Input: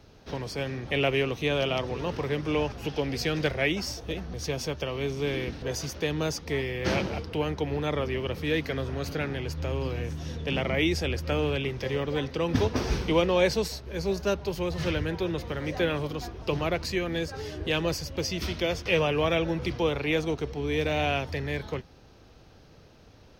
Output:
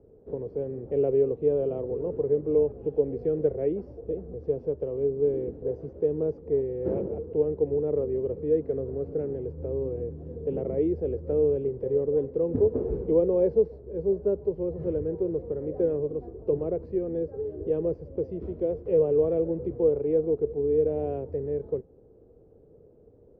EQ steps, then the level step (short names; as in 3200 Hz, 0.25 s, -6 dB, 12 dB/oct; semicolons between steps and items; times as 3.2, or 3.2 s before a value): synth low-pass 450 Hz, resonance Q 4.9; -6.0 dB